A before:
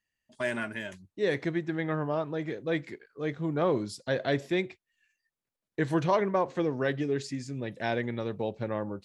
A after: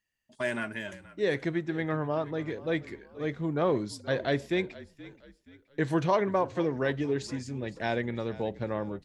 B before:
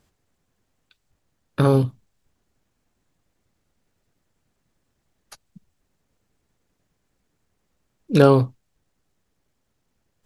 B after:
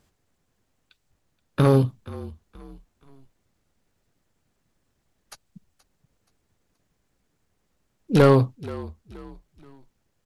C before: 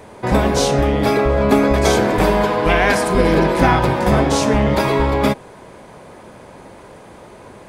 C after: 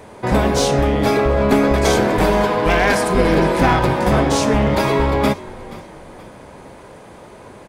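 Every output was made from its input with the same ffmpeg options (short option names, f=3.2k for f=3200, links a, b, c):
-filter_complex "[0:a]aeval=exprs='clip(val(0),-1,0.299)':c=same,asplit=4[a][b][c][d];[b]adelay=476,afreqshift=-45,volume=-18.5dB[e];[c]adelay=952,afreqshift=-90,volume=-26.5dB[f];[d]adelay=1428,afreqshift=-135,volume=-34.4dB[g];[a][e][f][g]amix=inputs=4:normalize=0"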